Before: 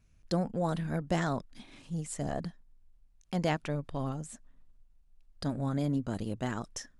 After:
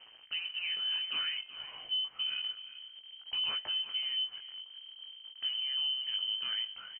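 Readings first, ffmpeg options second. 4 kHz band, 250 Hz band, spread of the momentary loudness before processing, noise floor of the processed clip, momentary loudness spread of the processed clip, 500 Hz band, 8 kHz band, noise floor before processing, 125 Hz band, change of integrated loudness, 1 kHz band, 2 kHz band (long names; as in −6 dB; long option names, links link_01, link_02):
+19.5 dB, below −35 dB, 10 LU, −56 dBFS, 15 LU, −27.5 dB, below −35 dB, −63 dBFS, below −35 dB, +1.0 dB, −14.5 dB, +1.5 dB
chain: -filter_complex "[0:a]aeval=exprs='val(0)+0.5*0.00794*sgn(val(0))':channel_layout=same,highpass=100,bandreject=frequency=179.4:width_type=h:width=4,bandreject=frequency=358.8:width_type=h:width=4,bandreject=frequency=538.2:width_type=h:width=4,bandreject=frequency=717.6:width_type=h:width=4,bandreject=frequency=897:width_type=h:width=4,bandreject=frequency=1076.4:width_type=h:width=4,bandreject=frequency=1255.8:width_type=h:width=4,bandreject=frequency=1435.2:width_type=h:width=4,bandreject=frequency=1614.6:width_type=h:width=4,asubboost=boost=7.5:cutoff=180,acrossover=split=1500[link_01][link_02];[link_01]alimiter=limit=-23dB:level=0:latency=1:release=226[link_03];[link_03][link_02]amix=inputs=2:normalize=0,flanger=delay=18:depth=2:speed=0.59,asplit=2[link_04][link_05];[link_05]aecho=0:1:376:0.168[link_06];[link_04][link_06]amix=inputs=2:normalize=0,acompressor=threshold=-30dB:ratio=6,lowpass=frequency=2700:width_type=q:width=0.5098,lowpass=frequency=2700:width_type=q:width=0.6013,lowpass=frequency=2700:width_type=q:width=0.9,lowpass=frequency=2700:width_type=q:width=2.563,afreqshift=-3200"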